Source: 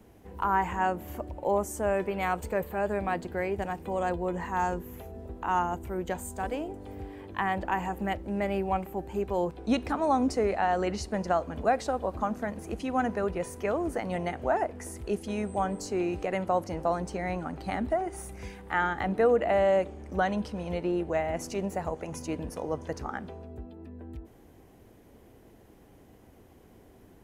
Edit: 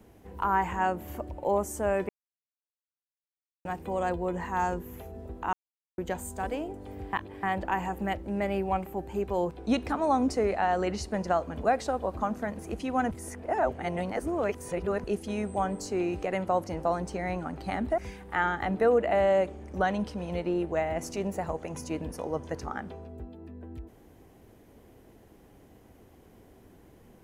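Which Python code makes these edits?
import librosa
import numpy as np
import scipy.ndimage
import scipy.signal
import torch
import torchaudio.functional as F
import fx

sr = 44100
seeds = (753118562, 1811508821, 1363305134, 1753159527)

y = fx.edit(x, sr, fx.silence(start_s=2.09, length_s=1.56),
    fx.silence(start_s=5.53, length_s=0.45),
    fx.reverse_span(start_s=7.13, length_s=0.3),
    fx.reverse_span(start_s=13.11, length_s=1.93),
    fx.cut(start_s=17.98, length_s=0.38), tone=tone)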